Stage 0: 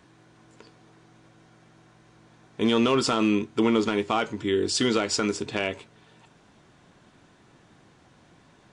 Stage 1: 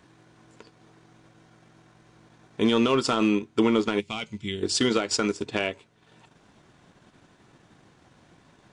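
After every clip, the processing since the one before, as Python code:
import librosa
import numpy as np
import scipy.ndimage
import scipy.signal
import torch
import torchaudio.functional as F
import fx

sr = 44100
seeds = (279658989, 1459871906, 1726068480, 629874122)

y = fx.spec_box(x, sr, start_s=4.0, length_s=0.63, low_hz=220.0, high_hz=2000.0, gain_db=-12)
y = fx.transient(y, sr, attack_db=2, sustain_db=-8)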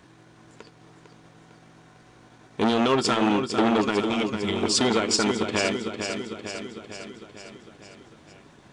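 y = fx.echo_feedback(x, sr, ms=452, feedback_pct=59, wet_db=-8.0)
y = fx.transformer_sat(y, sr, knee_hz=990.0)
y = y * librosa.db_to_amplitude(3.5)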